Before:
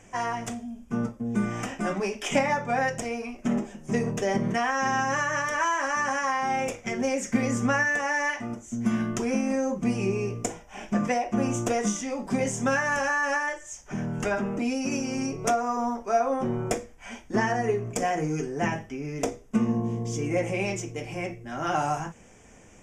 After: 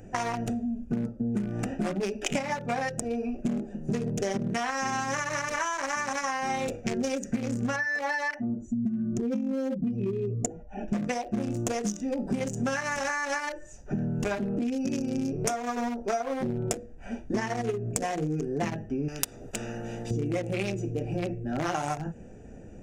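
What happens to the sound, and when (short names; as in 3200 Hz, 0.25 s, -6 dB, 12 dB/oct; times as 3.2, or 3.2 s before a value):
7.76–10.88 spectral contrast raised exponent 1.6
19.08–20.11 spectral compressor 10:1
whole clip: Wiener smoothing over 41 samples; high shelf 3000 Hz +9.5 dB; compressor 12:1, threshold -35 dBFS; gain +9 dB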